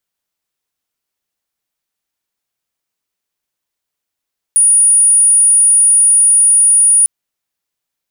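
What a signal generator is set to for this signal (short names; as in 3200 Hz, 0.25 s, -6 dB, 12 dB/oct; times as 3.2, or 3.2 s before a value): tone sine 9630 Hz -5.5 dBFS 2.50 s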